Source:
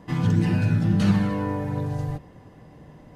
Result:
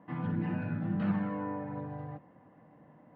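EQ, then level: BPF 220–2000 Hz; air absorption 310 m; bell 400 Hz -10.5 dB 0.37 oct; -5.0 dB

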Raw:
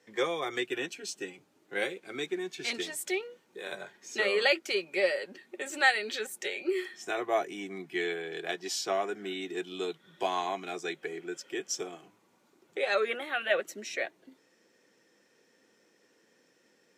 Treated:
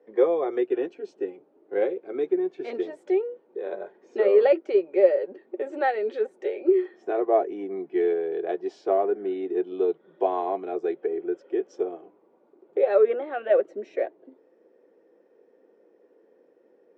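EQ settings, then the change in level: band-pass 560 Hz, Q 0.8; air absorption 66 m; bell 420 Hz +14.5 dB 1.9 oct; -1.5 dB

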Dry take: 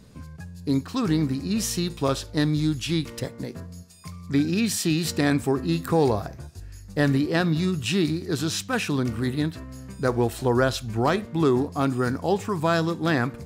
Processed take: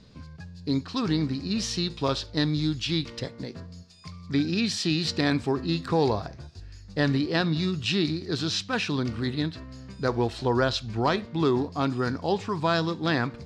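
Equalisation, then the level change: dynamic EQ 950 Hz, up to +4 dB, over -42 dBFS, Q 6.4; synth low-pass 4500 Hz, resonance Q 2.1; -3.0 dB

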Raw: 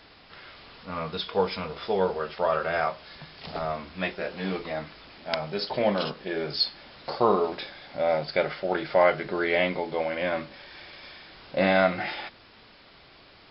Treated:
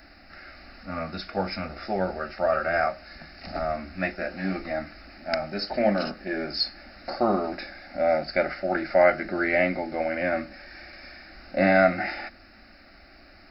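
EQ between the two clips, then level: low shelf 170 Hz +9.5 dB; high shelf 4200 Hz +9 dB; fixed phaser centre 670 Hz, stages 8; +2.5 dB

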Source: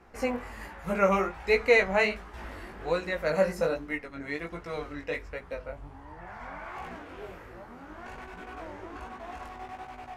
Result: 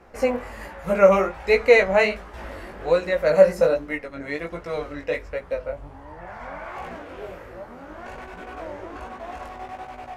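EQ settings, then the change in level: bell 560 Hz +8 dB 0.41 oct; +4.0 dB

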